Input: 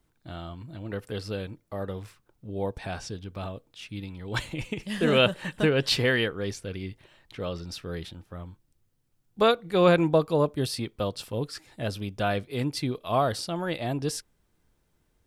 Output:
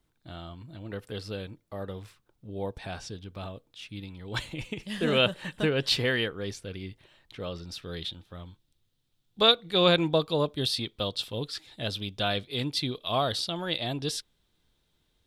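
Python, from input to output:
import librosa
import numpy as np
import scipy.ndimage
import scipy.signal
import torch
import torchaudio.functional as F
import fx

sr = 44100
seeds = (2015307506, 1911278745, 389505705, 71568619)

y = fx.peak_eq(x, sr, hz=3600.0, db=fx.steps((0.0, 4.5), (7.82, 15.0)), octaves=0.7)
y = y * librosa.db_to_amplitude(-3.5)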